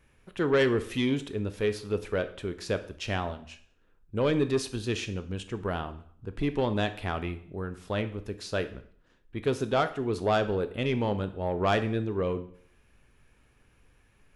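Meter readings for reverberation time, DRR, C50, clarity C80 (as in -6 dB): 0.55 s, 10.0 dB, 14.0 dB, 17.5 dB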